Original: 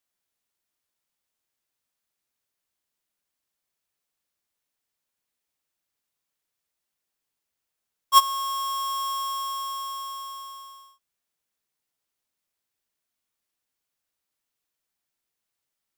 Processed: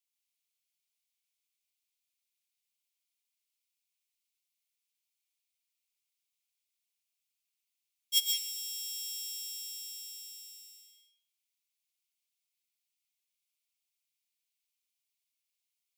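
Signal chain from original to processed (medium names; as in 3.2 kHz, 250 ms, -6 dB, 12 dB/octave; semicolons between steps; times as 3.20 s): steep high-pass 2.1 kHz 96 dB/octave; reverberation RT60 1.2 s, pre-delay 98 ms, DRR -2 dB; trim -4.5 dB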